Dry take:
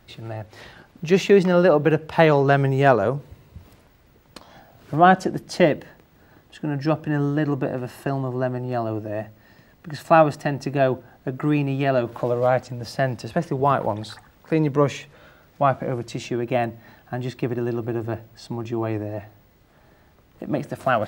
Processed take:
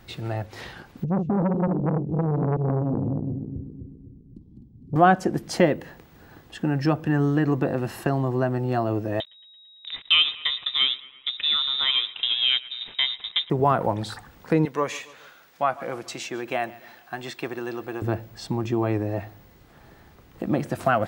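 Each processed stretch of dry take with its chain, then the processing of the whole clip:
0:01.04–0:04.96: feedback delay that plays each chunk backwards 127 ms, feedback 68%, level −5 dB + inverse Chebyshev low-pass filter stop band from 580 Hz + saturating transformer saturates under 610 Hz
0:09.20–0:13.50: slack as between gear wheels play −28.5 dBFS + feedback echo with a high-pass in the loop 112 ms, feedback 63%, high-pass 510 Hz, level −19.5 dB + voice inversion scrambler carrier 3,800 Hz
0:14.65–0:18.02: high-pass filter 1,100 Hz 6 dB per octave + repeating echo 140 ms, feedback 48%, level −21.5 dB
whole clip: notch filter 610 Hz, Q 12; dynamic equaliser 3,900 Hz, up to −5 dB, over −40 dBFS, Q 1.1; downward compressor 1.5 to 1, threshold −27 dBFS; level +4 dB

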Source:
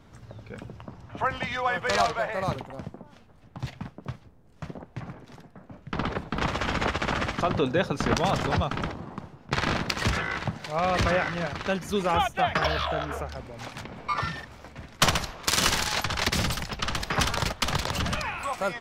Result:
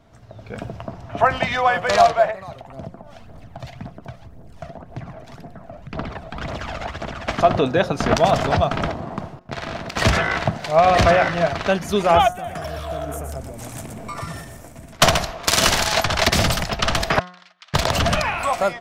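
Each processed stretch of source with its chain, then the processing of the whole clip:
0:02.31–0:07.28: downward compressor 2 to 1, threshold −51 dBFS + phase shifter 1.9 Hz, delay 1.7 ms, feedback 51%
0:09.39–0:09.96: downward expander −43 dBFS + downward compressor 8 to 1, threshold −36 dBFS
0:12.32–0:14.93: drawn EQ curve 300 Hz 0 dB, 720 Hz −8 dB, 4,500 Hz −9 dB, 8,400 Hz +12 dB + downward compressor 2 to 1, threshold −43 dBFS + single-tap delay 121 ms −6 dB
0:17.19–0:17.74: gate with flip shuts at −27 dBFS, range −26 dB + flat-topped band-pass 2,500 Hz, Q 0.67
whole clip: parametric band 670 Hz +11 dB 0.24 octaves; hum removal 180.1 Hz, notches 11; automatic gain control gain up to 11.5 dB; level −1.5 dB

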